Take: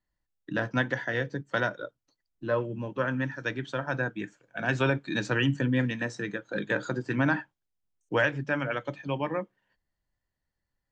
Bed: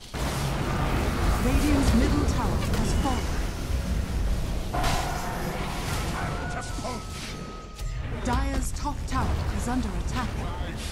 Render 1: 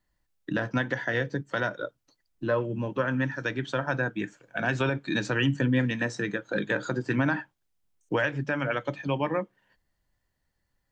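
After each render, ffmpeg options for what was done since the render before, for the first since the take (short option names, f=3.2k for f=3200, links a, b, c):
-filter_complex "[0:a]asplit=2[a][b];[b]acompressor=threshold=-37dB:ratio=6,volume=1.5dB[c];[a][c]amix=inputs=2:normalize=0,alimiter=limit=-15dB:level=0:latency=1:release=134"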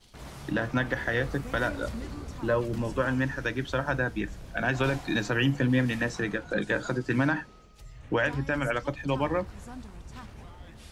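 -filter_complex "[1:a]volume=-15dB[a];[0:a][a]amix=inputs=2:normalize=0"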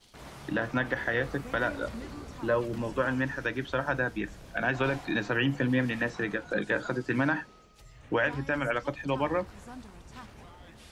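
-filter_complex "[0:a]acrossover=split=3700[a][b];[b]acompressor=threshold=-54dB:ratio=4:attack=1:release=60[c];[a][c]amix=inputs=2:normalize=0,lowshelf=f=150:g=-8"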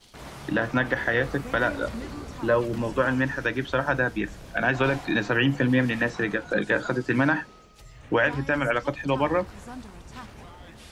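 -af "volume=5dB"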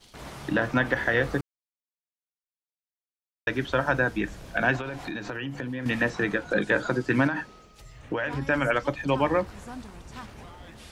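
-filter_complex "[0:a]asettb=1/sr,asplit=3[a][b][c];[a]atrim=end=4.764[d];[b]atrim=start=4.76:end=5.86,asetpts=PTS-STARTPTS,afade=t=in:d=0.004:c=qsin,afade=t=out:st=1.096:d=0.004:c=qsin,acompressor=threshold=-30dB:ratio=6:attack=3.2:release=140:knee=1:detection=peak[e];[c]atrim=start=5.856[f];[d][e]acrossfade=d=0.004:c1=hsin:c2=qsin[g];[g][f]acrossfade=d=0.004:c1=qsin:c2=hsin,asettb=1/sr,asplit=3[h][i][j];[h]atrim=end=7.274[k];[i]atrim=start=7.27:end=8.42,asetpts=PTS-STARTPTS,afade=t=in:d=0.004:c=qsin,afade=t=out:st=1.146:d=0.004:c=qsin,acompressor=threshold=-24dB:ratio=6:attack=3.2:release=140:knee=1:detection=peak[l];[j]atrim=start=8.416[m];[k][l]acrossfade=d=0.004:c1=hsin:c2=qsin[n];[n][m]acrossfade=d=0.004:c1=qsin:c2=hsin,asplit=3[o][p][q];[o]atrim=end=1.41,asetpts=PTS-STARTPTS,afade=t=out:st=1.406:d=0.004:c=hsin[r];[p]atrim=start=1.41:end=3.47,asetpts=PTS-STARTPTS,volume=0[s];[q]atrim=start=3.47,asetpts=PTS-STARTPTS,afade=t=in:d=0.004:c=hsin[t];[r][s][t]concat=n=3:v=0:a=1"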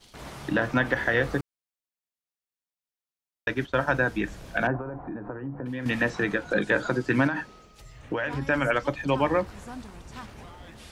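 -filter_complex "[0:a]asettb=1/sr,asplit=3[a][b][c];[a]atrim=end=3.484[d];[b]atrim=start=3.48:end=3.99,asetpts=PTS-STARTPTS,afade=t=in:d=0.004:c=qsin,afade=t=out:st=0.506:d=0.004:c=qsin,agate=range=-33dB:threshold=-30dB:ratio=3:release=100:detection=peak[e];[c]atrim=start=3.986[f];[d][e]acrossfade=d=0.004:c1=hsin:c2=qsin[g];[g][f]acrossfade=d=0.004:c1=qsin:c2=hsin,asettb=1/sr,asplit=3[h][i][j];[h]atrim=end=4.674[k];[i]atrim=start=4.67:end=5.66,asetpts=PTS-STARTPTS,afade=t=in:d=0.004:c=qsin,afade=t=out:st=0.986:d=0.004:c=qsin,lowpass=f=1.2k:w=0.5412,lowpass=f=1.2k:w=1.3066[l];[j]atrim=start=5.656[m];[k][l]acrossfade=d=0.004:c1=hsin:c2=qsin[n];[n][m]acrossfade=d=0.004:c1=qsin:c2=hsin"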